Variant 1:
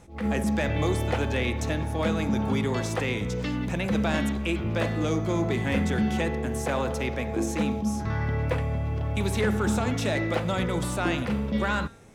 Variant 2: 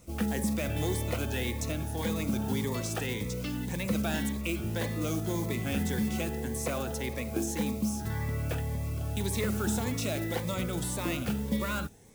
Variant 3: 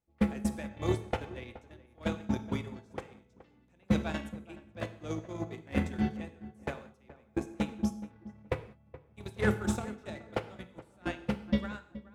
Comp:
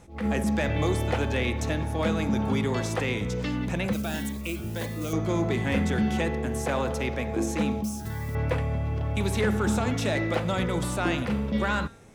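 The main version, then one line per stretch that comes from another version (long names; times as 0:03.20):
1
0:03.93–0:05.13: punch in from 2
0:07.84–0:08.35: punch in from 2
not used: 3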